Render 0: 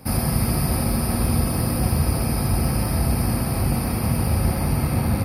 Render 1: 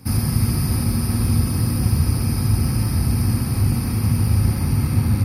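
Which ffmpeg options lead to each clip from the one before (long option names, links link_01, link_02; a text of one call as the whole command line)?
ffmpeg -i in.wav -af "equalizer=frequency=100:width_type=o:width=0.67:gain=10,equalizer=frequency=250:width_type=o:width=0.67:gain=4,equalizer=frequency=630:width_type=o:width=0.67:gain=-10,equalizer=frequency=6300:width_type=o:width=0.67:gain=7,volume=-2.5dB" out.wav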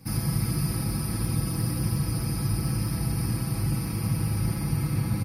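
ffmpeg -i in.wav -af "aecho=1:1:6.1:0.74,volume=-7.5dB" out.wav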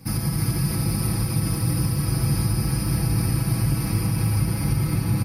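ffmpeg -i in.wav -af "alimiter=limit=-19dB:level=0:latency=1:release=96,aecho=1:1:310:0.631,volume=4.5dB" out.wav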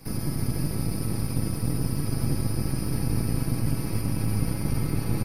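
ffmpeg -i in.wav -filter_complex "[0:a]acrossover=split=490[link_01][link_02];[link_01]aeval=exprs='max(val(0),0)':channel_layout=same[link_03];[link_02]alimiter=level_in=7dB:limit=-24dB:level=0:latency=1:release=97,volume=-7dB[link_04];[link_03][link_04]amix=inputs=2:normalize=0" out.wav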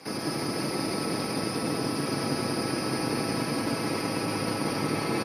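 ffmpeg -i in.wav -af "highpass=390,lowpass=6200,aecho=1:1:190:0.668,volume=8dB" out.wav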